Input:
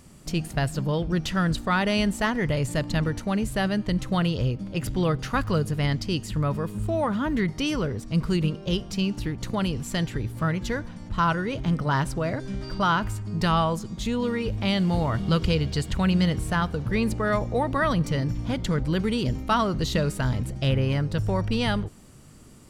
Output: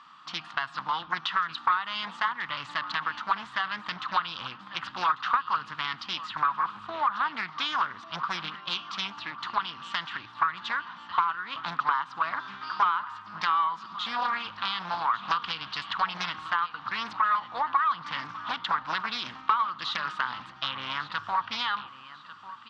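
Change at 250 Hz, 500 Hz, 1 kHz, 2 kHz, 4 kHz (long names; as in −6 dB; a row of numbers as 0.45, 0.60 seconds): −23.0, −19.0, +3.5, +0.5, +0.5 decibels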